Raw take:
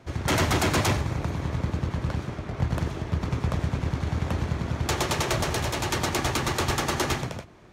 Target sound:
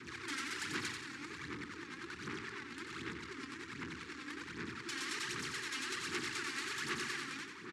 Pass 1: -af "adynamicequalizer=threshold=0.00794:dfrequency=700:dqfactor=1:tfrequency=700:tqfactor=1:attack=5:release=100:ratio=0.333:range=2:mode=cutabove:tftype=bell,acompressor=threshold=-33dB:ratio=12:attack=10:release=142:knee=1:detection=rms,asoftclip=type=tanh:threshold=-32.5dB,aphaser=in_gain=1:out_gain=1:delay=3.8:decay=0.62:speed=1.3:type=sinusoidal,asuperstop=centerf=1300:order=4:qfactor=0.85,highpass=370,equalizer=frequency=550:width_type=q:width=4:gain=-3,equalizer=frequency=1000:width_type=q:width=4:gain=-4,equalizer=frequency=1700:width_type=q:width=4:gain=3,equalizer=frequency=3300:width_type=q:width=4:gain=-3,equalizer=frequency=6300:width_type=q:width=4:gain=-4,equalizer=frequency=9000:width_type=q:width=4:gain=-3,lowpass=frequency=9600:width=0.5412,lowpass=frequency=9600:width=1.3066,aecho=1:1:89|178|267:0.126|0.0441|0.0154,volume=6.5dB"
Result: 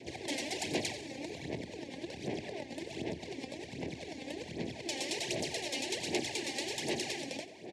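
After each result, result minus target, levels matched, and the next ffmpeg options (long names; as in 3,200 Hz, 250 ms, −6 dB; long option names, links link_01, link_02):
500 Hz band +8.0 dB; echo-to-direct −11.5 dB; soft clipping: distortion −9 dB
-af "adynamicequalizer=threshold=0.00794:dfrequency=700:dqfactor=1:tfrequency=700:tqfactor=1:attack=5:release=100:ratio=0.333:range=2:mode=cutabove:tftype=bell,acompressor=threshold=-33dB:ratio=12:attack=10:release=142:knee=1:detection=rms,asoftclip=type=tanh:threshold=-32.5dB,aphaser=in_gain=1:out_gain=1:delay=3.8:decay=0.62:speed=1.3:type=sinusoidal,asuperstop=centerf=640:order=4:qfactor=0.85,highpass=370,equalizer=frequency=550:width_type=q:width=4:gain=-3,equalizer=frequency=1000:width_type=q:width=4:gain=-4,equalizer=frequency=1700:width_type=q:width=4:gain=3,equalizer=frequency=3300:width_type=q:width=4:gain=-3,equalizer=frequency=6300:width_type=q:width=4:gain=-4,equalizer=frequency=9000:width_type=q:width=4:gain=-3,lowpass=frequency=9600:width=0.5412,lowpass=frequency=9600:width=1.3066,aecho=1:1:89|178|267:0.126|0.0441|0.0154,volume=6.5dB"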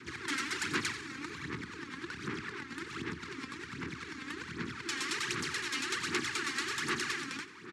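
echo-to-direct −11.5 dB; soft clipping: distortion −9 dB
-af "adynamicequalizer=threshold=0.00794:dfrequency=700:dqfactor=1:tfrequency=700:tqfactor=1:attack=5:release=100:ratio=0.333:range=2:mode=cutabove:tftype=bell,acompressor=threshold=-33dB:ratio=12:attack=10:release=142:knee=1:detection=rms,asoftclip=type=tanh:threshold=-32.5dB,aphaser=in_gain=1:out_gain=1:delay=3.8:decay=0.62:speed=1.3:type=sinusoidal,asuperstop=centerf=640:order=4:qfactor=0.85,highpass=370,equalizer=frequency=550:width_type=q:width=4:gain=-3,equalizer=frequency=1000:width_type=q:width=4:gain=-4,equalizer=frequency=1700:width_type=q:width=4:gain=3,equalizer=frequency=3300:width_type=q:width=4:gain=-3,equalizer=frequency=6300:width_type=q:width=4:gain=-4,equalizer=frequency=9000:width_type=q:width=4:gain=-3,lowpass=frequency=9600:width=0.5412,lowpass=frequency=9600:width=1.3066,aecho=1:1:89|178|267|356:0.473|0.166|0.058|0.0203,volume=6.5dB"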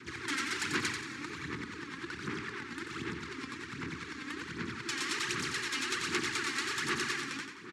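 soft clipping: distortion −9 dB
-af "adynamicequalizer=threshold=0.00794:dfrequency=700:dqfactor=1:tfrequency=700:tqfactor=1:attack=5:release=100:ratio=0.333:range=2:mode=cutabove:tftype=bell,acompressor=threshold=-33dB:ratio=12:attack=10:release=142:knee=1:detection=rms,asoftclip=type=tanh:threshold=-43.5dB,aphaser=in_gain=1:out_gain=1:delay=3.8:decay=0.62:speed=1.3:type=sinusoidal,asuperstop=centerf=640:order=4:qfactor=0.85,highpass=370,equalizer=frequency=550:width_type=q:width=4:gain=-3,equalizer=frequency=1000:width_type=q:width=4:gain=-4,equalizer=frequency=1700:width_type=q:width=4:gain=3,equalizer=frequency=3300:width_type=q:width=4:gain=-3,equalizer=frequency=6300:width_type=q:width=4:gain=-4,equalizer=frequency=9000:width_type=q:width=4:gain=-3,lowpass=frequency=9600:width=0.5412,lowpass=frequency=9600:width=1.3066,aecho=1:1:89|178|267|356:0.473|0.166|0.058|0.0203,volume=6.5dB"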